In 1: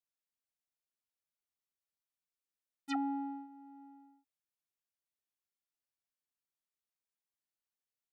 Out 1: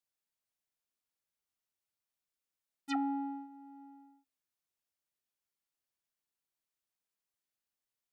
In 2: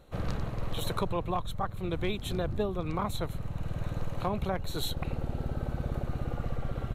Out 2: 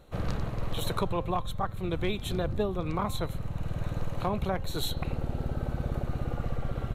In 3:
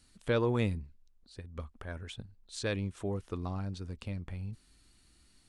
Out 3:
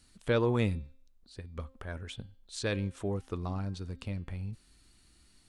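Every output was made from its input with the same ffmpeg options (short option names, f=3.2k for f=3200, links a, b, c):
-af "bandreject=f=264.2:t=h:w=4,bandreject=f=528.4:t=h:w=4,bandreject=f=792.6:t=h:w=4,bandreject=f=1.0568k:t=h:w=4,bandreject=f=1.321k:t=h:w=4,bandreject=f=1.5852k:t=h:w=4,bandreject=f=1.8494k:t=h:w=4,bandreject=f=2.1136k:t=h:w=4,bandreject=f=2.3778k:t=h:w=4,bandreject=f=2.642k:t=h:w=4,bandreject=f=2.9062k:t=h:w=4,bandreject=f=3.1704k:t=h:w=4,bandreject=f=3.4346k:t=h:w=4,bandreject=f=3.6988k:t=h:w=4,bandreject=f=3.963k:t=h:w=4,bandreject=f=4.2272k:t=h:w=4,bandreject=f=4.4914k:t=h:w=4,bandreject=f=4.7556k:t=h:w=4,volume=1.5dB"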